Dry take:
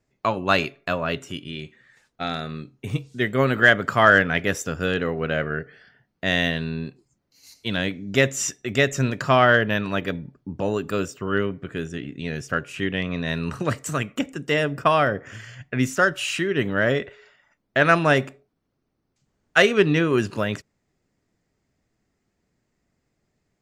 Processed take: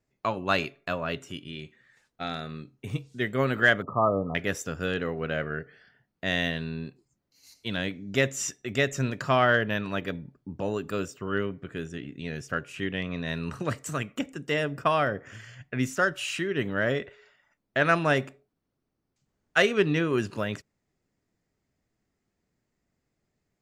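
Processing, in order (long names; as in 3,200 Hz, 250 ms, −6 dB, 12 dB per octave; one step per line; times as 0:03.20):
0:03.82–0:04.35: linear-phase brick-wall low-pass 1,300 Hz
level −5.5 dB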